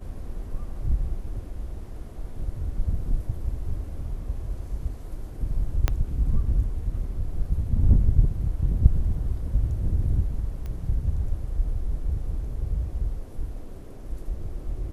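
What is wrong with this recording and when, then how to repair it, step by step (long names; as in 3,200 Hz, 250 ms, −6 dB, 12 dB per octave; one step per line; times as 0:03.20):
0:05.88: click −9 dBFS
0:10.66: click −24 dBFS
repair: click removal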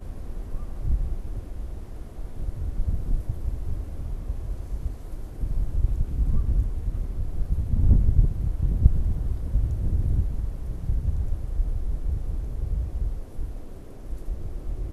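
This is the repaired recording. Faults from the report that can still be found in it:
0:05.88: click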